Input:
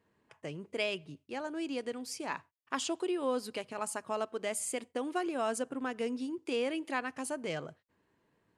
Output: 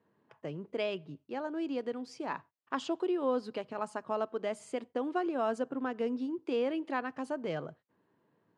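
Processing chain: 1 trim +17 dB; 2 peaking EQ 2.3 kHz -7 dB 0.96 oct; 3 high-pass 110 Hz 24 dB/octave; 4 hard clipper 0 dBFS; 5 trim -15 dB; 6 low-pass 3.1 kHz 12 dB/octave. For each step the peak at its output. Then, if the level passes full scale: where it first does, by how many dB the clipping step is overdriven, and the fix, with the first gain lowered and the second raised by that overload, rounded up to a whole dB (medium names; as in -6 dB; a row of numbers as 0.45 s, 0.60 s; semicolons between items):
-1.0 dBFS, -3.0 dBFS, -2.5 dBFS, -2.5 dBFS, -17.5 dBFS, -18.0 dBFS; nothing clips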